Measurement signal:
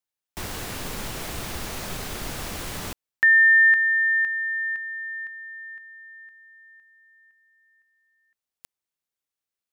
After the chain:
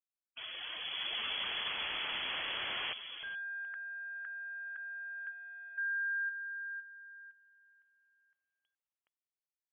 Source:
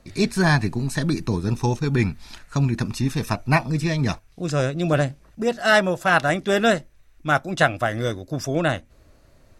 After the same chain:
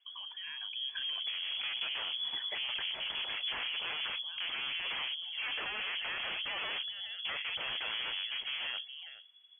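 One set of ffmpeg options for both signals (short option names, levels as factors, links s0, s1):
-filter_complex "[0:a]afftdn=nr=15:nf=-37,lowshelf=f=120:g=-5,acompressor=threshold=0.0316:ratio=6:attack=0.37:release=27:knee=6:detection=rms,alimiter=level_in=3.16:limit=0.0631:level=0:latency=1:release=59,volume=0.316,dynaudnorm=f=240:g=11:m=5.31,asplit=2[s0][s1];[s1]adelay=419.8,volume=0.178,highshelf=f=4000:g=-9.45[s2];[s0][s2]amix=inputs=2:normalize=0,aeval=exprs='0.0355*(abs(mod(val(0)/0.0355+3,4)-2)-1)':c=same,lowpass=f=2900:t=q:w=0.5098,lowpass=f=2900:t=q:w=0.6013,lowpass=f=2900:t=q:w=0.9,lowpass=f=2900:t=q:w=2.563,afreqshift=-3400,volume=0.708"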